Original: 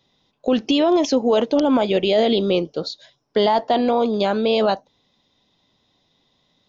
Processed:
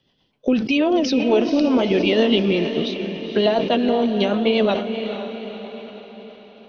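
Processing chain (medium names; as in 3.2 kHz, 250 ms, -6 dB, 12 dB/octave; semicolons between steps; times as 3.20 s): rotary cabinet horn 8 Hz; formant shift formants -2 st; echo that smears into a reverb 491 ms, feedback 52%, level -8.5 dB; decay stretcher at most 74 dB/s; trim +1.5 dB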